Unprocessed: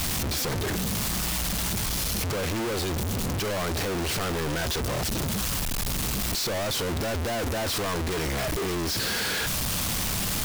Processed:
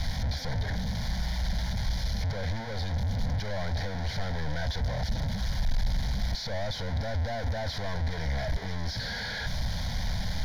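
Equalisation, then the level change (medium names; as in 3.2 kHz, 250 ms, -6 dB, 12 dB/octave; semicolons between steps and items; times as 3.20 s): distance through air 80 m; bass shelf 83 Hz +11 dB; static phaser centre 1.8 kHz, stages 8; -3.0 dB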